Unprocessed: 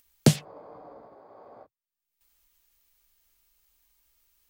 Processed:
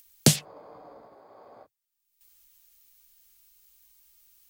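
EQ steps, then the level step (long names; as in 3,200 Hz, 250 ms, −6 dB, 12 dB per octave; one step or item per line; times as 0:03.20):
high-shelf EQ 2,600 Hz +11 dB
−2.0 dB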